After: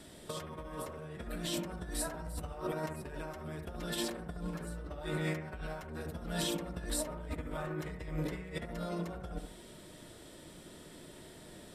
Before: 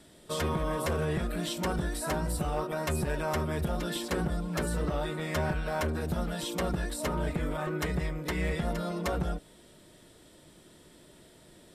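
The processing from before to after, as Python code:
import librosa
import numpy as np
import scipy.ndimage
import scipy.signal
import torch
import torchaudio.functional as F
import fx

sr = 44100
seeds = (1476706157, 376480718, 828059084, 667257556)

p1 = fx.over_compress(x, sr, threshold_db=-36.0, ratio=-0.5)
p2 = p1 + fx.echo_bbd(p1, sr, ms=70, stages=1024, feedback_pct=37, wet_db=-6.5, dry=0)
y = p2 * 10.0 ** (-3.0 / 20.0)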